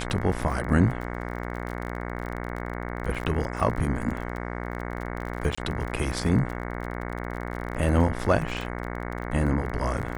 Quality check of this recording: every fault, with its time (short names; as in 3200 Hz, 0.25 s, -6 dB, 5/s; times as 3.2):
buzz 60 Hz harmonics 37 -33 dBFS
crackle 34/s -32 dBFS
5.55–5.58 gap 25 ms